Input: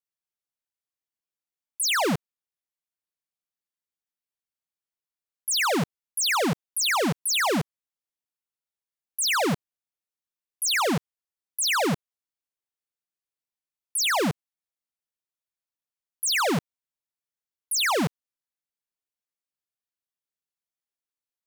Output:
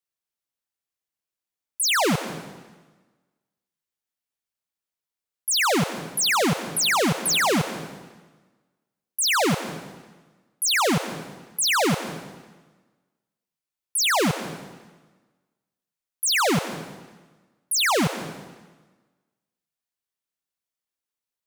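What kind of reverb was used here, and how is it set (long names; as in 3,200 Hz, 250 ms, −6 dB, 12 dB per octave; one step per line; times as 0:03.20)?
dense smooth reverb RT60 1.3 s, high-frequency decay 0.9×, pre-delay 120 ms, DRR 10.5 dB
level +2.5 dB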